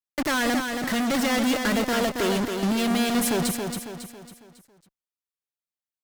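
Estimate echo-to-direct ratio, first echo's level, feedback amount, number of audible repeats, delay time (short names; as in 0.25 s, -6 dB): -4.5 dB, -5.5 dB, 44%, 5, 0.275 s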